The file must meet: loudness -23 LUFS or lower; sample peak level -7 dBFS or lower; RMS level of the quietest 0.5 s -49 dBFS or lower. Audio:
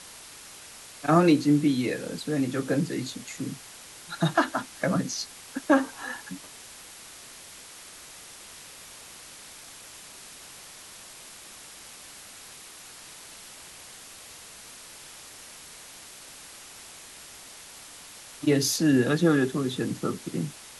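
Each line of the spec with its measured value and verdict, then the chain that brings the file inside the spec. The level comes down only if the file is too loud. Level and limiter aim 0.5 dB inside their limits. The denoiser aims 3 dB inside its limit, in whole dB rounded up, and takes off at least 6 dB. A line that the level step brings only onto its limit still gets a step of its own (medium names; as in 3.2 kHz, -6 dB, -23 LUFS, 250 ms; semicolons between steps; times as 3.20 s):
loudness -26.0 LUFS: pass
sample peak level -8.0 dBFS: pass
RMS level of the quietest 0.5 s -46 dBFS: fail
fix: noise reduction 6 dB, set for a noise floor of -46 dBFS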